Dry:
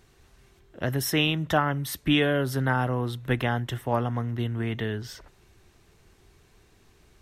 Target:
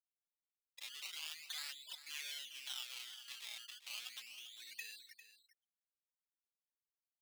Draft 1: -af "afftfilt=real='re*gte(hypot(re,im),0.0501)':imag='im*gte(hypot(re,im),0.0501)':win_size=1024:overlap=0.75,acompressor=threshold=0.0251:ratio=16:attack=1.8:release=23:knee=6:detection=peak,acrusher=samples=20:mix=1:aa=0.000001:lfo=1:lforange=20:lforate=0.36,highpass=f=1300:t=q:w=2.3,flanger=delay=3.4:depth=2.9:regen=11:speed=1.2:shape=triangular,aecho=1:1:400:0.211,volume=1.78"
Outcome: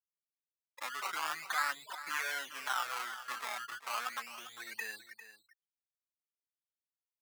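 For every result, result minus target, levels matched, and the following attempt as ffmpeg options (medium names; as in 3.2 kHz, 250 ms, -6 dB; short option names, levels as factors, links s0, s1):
1 kHz band +17.5 dB; compression: peak gain reduction -6 dB
-af "afftfilt=real='re*gte(hypot(re,im),0.0501)':imag='im*gte(hypot(re,im),0.0501)':win_size=1024:overlap=0.75,acompressor=threshold=0.0251:ratio=16:attack=1.8:release=23:knee=6:detection=peak,acrusher=samples=20:mix=1:aa=0.000001:lfo=1:lforange=20:lforate=0.36,highpass=f=3100:t=q:w=2.3,flanger=delay=3.4:depth=2.9:regen=11:speed=1.2:shape=triangular,aecho=1:1:400:0.211,volume=1.78"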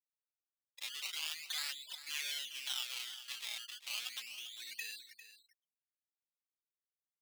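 compression: peak gain reduction -6 dB
-af "afftfilt=real='re*gte(hypot(re,im),0.0501)':imag='im*gte(hypot(re,im),0.0501)':win_size=1024:overlap=0.75,acompressor=threshold=0.0119:ratio=16:attack=1.8:release=23:knee=6:detection=peak,acrusher=samples=20:mix=1:aa=0.000001:lfo=1:lforange=20:lforate=0.36,highpass=f=3100:t=q:w=2.3,flanger=delay=3.4:depth=2.9:regen=11:speed=1.2:shape=triangular,aecho=1:1:400:0.211,volume=1.78"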